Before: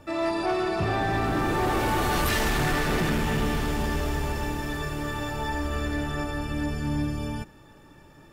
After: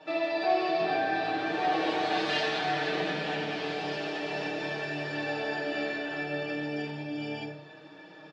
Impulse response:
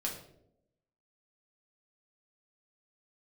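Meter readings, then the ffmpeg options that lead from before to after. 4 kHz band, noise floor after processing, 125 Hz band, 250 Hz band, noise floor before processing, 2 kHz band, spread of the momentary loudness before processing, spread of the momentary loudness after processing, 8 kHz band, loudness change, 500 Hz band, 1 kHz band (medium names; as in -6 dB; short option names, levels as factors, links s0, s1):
-0.5 dB, -50 dBFS, -14.0 dB, -6.0 dB, -52 dBFS, -1.5 dB, 7 LU, 8 LU, -15.0 dB, -3.5 dB, -1.0 dB, -2.0 dB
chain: -filter_complex "[0:a]aecho=1:1:6.4:0.89,acompressor=threshold=0.0447:ratio=6,flanger=delay=7.5:depth=8.4:regen=-57:speed=0.4:shape=sinusoidal,highpass=380,equalizer=f=710:t=q:w=4:g=4,equalizer=f=1100:t=q:w=4:g=-6,equalizer=f=3900:t=q:w=4:g=5,lowpass=f=4900:w=0.5412,lowpass=f=4900:w=1.3066[s0];[1:a]atrim=start_sample=2205[s1];[s0][s1]afir=irnorm=-1:irlink=0,volume=1.68"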